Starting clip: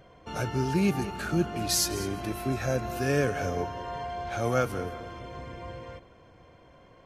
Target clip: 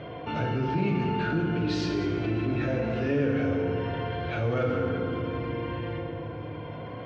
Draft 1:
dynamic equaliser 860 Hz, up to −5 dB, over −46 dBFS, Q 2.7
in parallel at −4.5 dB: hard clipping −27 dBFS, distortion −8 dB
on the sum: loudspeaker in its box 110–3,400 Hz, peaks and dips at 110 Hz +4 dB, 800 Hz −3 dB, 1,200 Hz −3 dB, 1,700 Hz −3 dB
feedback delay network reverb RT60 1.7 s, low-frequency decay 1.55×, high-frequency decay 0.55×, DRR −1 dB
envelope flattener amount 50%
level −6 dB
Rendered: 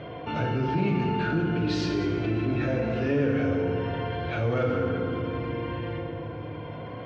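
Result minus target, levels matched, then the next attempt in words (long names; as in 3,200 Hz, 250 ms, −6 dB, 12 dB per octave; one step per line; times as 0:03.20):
hard clipping: distortion −5 dB
dynamic equaliser 860 Hz, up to −5 dB, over −46 dBFS, Q 2.7
in parallel at −4.5 dB: hard clipping −34 dBFS, distortion −3 dB
on the sum: loudspeaker in its box 110–3,400 Hz, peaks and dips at 110 Hz +4 dB, 800 Hz −3 dB, 1,200 Hz −3 dB, 1,700 Hz −3 dB
feedback delay network reverb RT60 1.7 s, low-frequency decay 1.55×, high-frequency decay 0.55×, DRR −1 dB
envelope flattener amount 50%
level −6 dB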